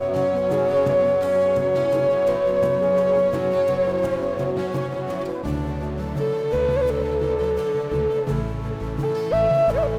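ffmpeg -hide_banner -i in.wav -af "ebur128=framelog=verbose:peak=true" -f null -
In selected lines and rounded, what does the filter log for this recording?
Integrated loudness:
  I:         -21.7 LUFS
  Threshold: -31.7 LUFS
Loudness range:
  LRA:         4.5 LU
  Threshold: -42.1 LUFS
  LRA low:   -24.3 LUFS
  LRA high:  -19.8 LUFS
True peak:
  Peak:       -9.1 dBFS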